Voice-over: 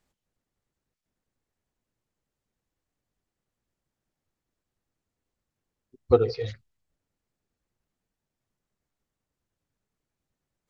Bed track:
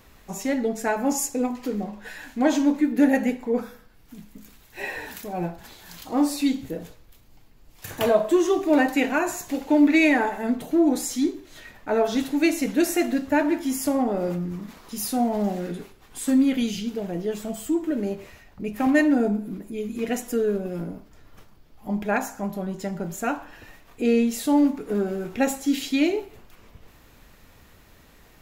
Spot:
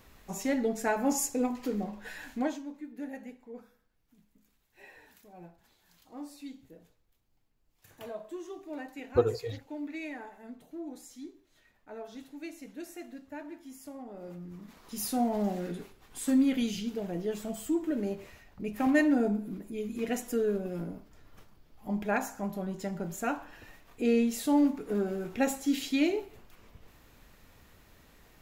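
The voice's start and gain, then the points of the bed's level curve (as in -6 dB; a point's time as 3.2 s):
3.05 s, -5.5 dB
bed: 2.36 s -4.5 dB
2.62 s -21.5 dB
14.04 s -21.5 dB
14.99 s -5.5 dB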